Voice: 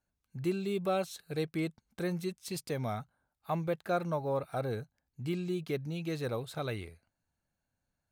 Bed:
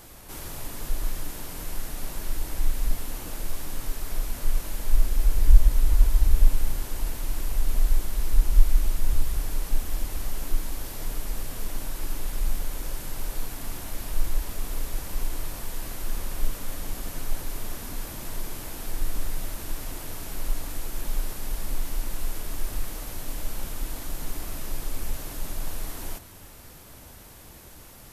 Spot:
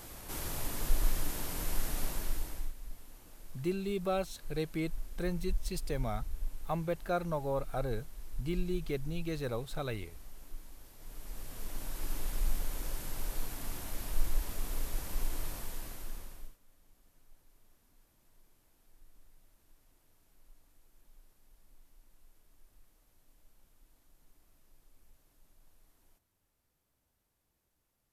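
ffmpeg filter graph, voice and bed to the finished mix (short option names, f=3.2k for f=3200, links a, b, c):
-filter_complex "[0:a]adelay=3200,volume=-1.5dB[a];[1:a]volume=13.5dB,afade=t=out:st=1.99:d=0.75:silence=0.112202,afade=t=in:st=10.98:d=1.19:silence=0.188365,afade=t=out:st=15.49:d=1.08:silence=0.0421697[b];[a][b]amix=inputs=2:normalize=0"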